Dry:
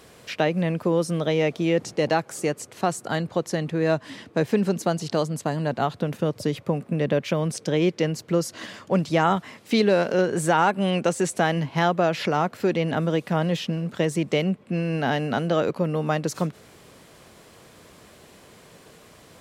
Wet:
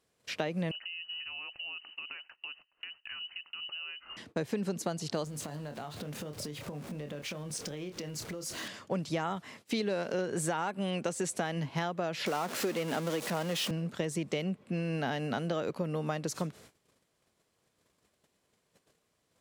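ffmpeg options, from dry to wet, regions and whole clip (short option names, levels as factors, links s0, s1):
-filter_complex "[0:a]asettb=1/sr,asplit=3[s0][s1][s2];[s0]atrim=end=0.714[s3];[s1]atrim=start=0.71:end=4.17,asetpts=PTS-STARTPTS,afade=t=in:d=0.004:c=qsin,afade=t=out:st=3.456:d=0.004:c=qsin,equalizer=f=760:w=1.6:g=-11,acompressor=threshold=0.0251:ratio=16:attack=3.2:release=140:knee=1:detection=peak,lowpass=f=2600:t=q:w=0.5098,lowpass=f=2600:t=q:w=0.6013,lowpass=f=2600:t=q:w=0.9,lowpass=f=2600:t=q:w=2.563,afreqshift=-3100[s4];[s2]atrim=start=4.166[s5];[s3][s4]acrossfade=d=0.004:c1=hsin:c2=qsin[s6];[s6][s5]acrossfade=d=0.004:c1=qsin:c2=hsin,asettb=1/sr,asplit=3[s7][s8][s9];[s7]atrim=end=5.244[s10];[s8]atrim=start=5.24:end=8.68,asetpts=PTS-STARTPTS,afade=t=in:d=0.004:c=qsin,afade=t=out:st=3.436:d=0.004:c=qsin,aeval=exprs='val(0)+0.5*0.0168*sgn(val(0))':c=same,asplit=2[s11][s12];[s12]adelay=27,volume=0.398[s13];[s11][s13]amix=inputs=2:normalize=0,atrim=end_sample=151704,acompressor=threshold=0.0316:ratio=10:attack=3.2:release=140:knee=1:detection=peak[s14];[s9]atrim=start=8.676[s15];[s10][s14]acrossfade=d=0.004:c1=hsin:c2=qsin[s16];[s16][s15]acrossfade=d=0.004:c1=qsin:c2=hsin,asettb=1/sr,asplit=3[s17][s18][s19];[s17]atrim=end=12.264[s20];[s18]atrim=start=12.26:end=13.71,asetpts=PTS-STARTPTS,afade=t=in:d=0.004:c=qsin,afade=t=out:st=1.446:d=0.004:c=qsin,aeval=exprs='val(0)+0.5*0.0531*sgn(val(0))':c=same,highpass=220[s21];[s19]atrim=start=13.706[s22];[s20][s21]acrossfade=d=0.004:c1=hsin:c2=qsin[s23];[s23][s22]acrossfade=d=0.004:c1=qsin:c2=hsin,agate=range=0.0891:threshold=0.00501:ratio=16:detection=peak,equalizer=f=7600:t=o:w=2.2:g=4,acompressor=threshold=0.0794:ratio=6,volume=0.473"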